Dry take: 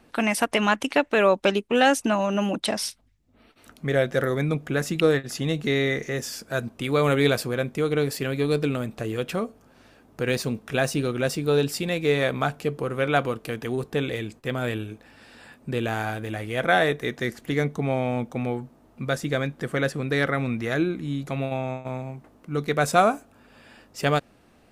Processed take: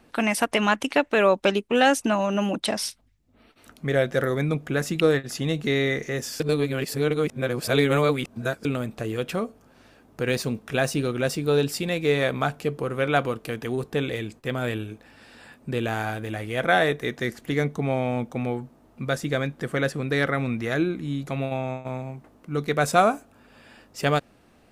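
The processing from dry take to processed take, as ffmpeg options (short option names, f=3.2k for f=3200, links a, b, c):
-filter_complex "[0:a]asplit=3[a][b][c];[a]atrim=end=6.402[d];[b]atrim=start=6.398:end=8.652,asetpts=PTS-STARTPTS,areverse[e];[c]atrim=start=8.648[f];[d][e]acrossfade=d=0.004:c1=hsin:c2=hsin[g];[g][f]acrossfade=d=0.004:c1=hsin:c2=hsin"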